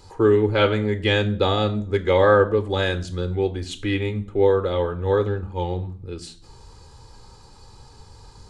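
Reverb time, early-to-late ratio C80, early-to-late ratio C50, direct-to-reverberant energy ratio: 0.50 s, 20.0 dB, 16.5 dB, 9.5 dB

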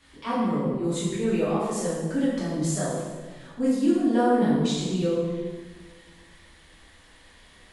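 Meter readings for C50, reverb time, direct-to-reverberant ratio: −0.5 dB, 1.5 s, −9.5 dB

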